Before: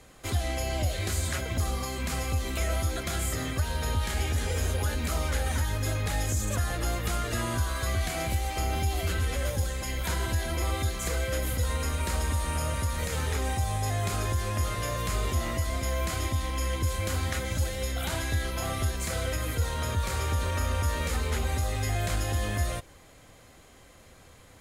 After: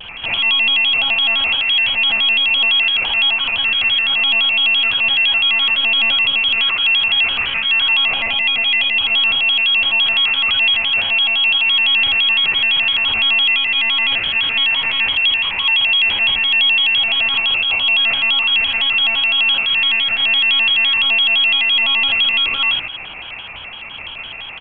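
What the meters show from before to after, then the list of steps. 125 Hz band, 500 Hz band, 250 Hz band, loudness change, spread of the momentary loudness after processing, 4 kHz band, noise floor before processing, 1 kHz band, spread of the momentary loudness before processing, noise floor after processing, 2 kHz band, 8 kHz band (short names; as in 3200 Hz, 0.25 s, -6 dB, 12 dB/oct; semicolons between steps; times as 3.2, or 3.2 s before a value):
under -15 dB, -2.5 dB, -2.5 dB, +17.5 dB, 3 LU, +27.0 dB, -53 dBFS, +6.0 dB, 2 LU, -31 dBFS, +23.0 dB, under -25 dB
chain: bell 1200 Hz -7 dB 0.41 oct; in parallel at +2 dB: negative-ratio compressor -37 dBFS, ratio -1; on the sum: inverted band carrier 3000 Hz; monotone LPC vocoder at 8 kHz 250 Hz; limiter -22.5 dBFS, peak gain reduction 9 dB; early reflections 57 ms -4.5 dB, 73 ms -5 dB; shaped vibrato square 5.9 Hz, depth 160 cents; gain +8 dB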